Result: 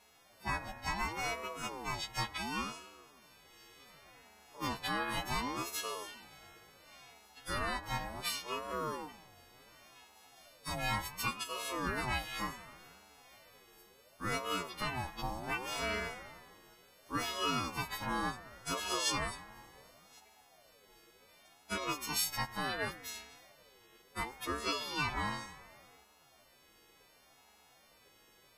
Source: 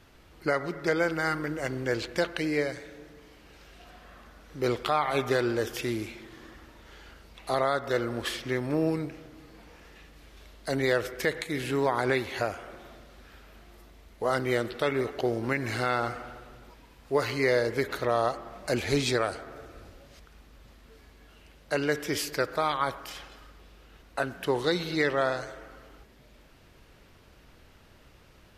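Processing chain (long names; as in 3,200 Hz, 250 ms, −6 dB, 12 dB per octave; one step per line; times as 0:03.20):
every partial snapped to a pitch grid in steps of 3 semitones
ring modulator whose carrier an LFO sweeps 610 Hz, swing 35%, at 0.69 Hz
level −8 dB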